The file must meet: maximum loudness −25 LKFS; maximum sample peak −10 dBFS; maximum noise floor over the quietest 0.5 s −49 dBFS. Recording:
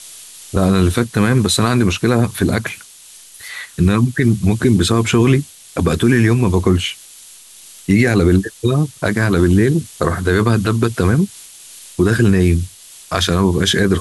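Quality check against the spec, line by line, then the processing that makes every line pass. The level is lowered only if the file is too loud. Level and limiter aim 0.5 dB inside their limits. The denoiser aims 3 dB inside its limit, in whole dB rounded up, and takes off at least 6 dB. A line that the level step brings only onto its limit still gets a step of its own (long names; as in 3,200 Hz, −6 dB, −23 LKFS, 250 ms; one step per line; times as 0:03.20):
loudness −15.5 LKFS: out of spec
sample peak −2.5 dBFS: out of spec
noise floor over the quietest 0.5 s −41 dBFS: out of spec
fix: level −10 dB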